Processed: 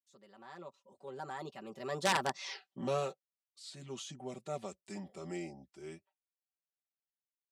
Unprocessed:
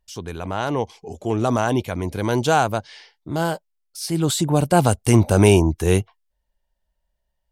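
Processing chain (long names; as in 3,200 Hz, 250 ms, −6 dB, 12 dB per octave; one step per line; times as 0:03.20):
source passing by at 0:02.54, 60 m/s, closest 3.7 metres
comb filter 5.2 ms, depth 98%
wrap-around overflow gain 23.5 dB
band-pass filter 200–7,300 Hz
level +2.5 dB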